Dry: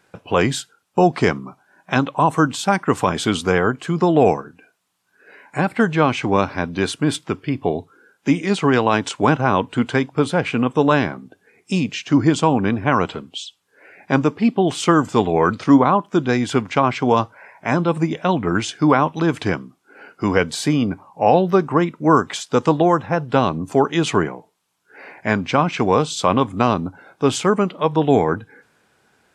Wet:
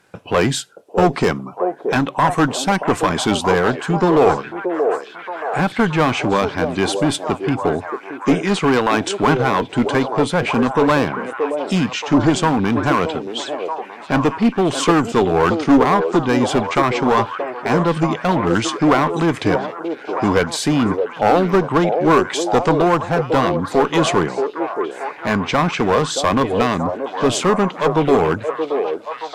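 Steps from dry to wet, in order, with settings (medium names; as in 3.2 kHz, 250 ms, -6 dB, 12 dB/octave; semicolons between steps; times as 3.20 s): one-sided clip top -15.5 dBFS; repeats whose band climbs or falls 627 ms, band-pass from 490 Hz, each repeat 0.7 oct, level -2.5 dB; trim +3 dB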